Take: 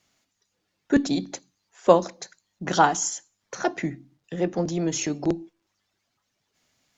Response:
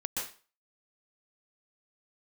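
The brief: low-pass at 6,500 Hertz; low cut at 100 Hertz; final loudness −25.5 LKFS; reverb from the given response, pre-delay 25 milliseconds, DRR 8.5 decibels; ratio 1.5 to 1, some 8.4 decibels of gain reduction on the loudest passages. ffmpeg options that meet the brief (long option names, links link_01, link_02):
-filter_complex "[0:a]highpass=100,lowpass=6500,acompressor=threshold=-34dB:ratio=1.5,asplit=2[link_01][link_02];[1:a]atrim=start_sample=2205,adelay=25[link_03];[link_02][link_03]afir=irnorm=-1:irlink=0,volume=-12.5dB[link_04];[link_01][link_04]amix=inputs=2:normalize=0,volume=6dB"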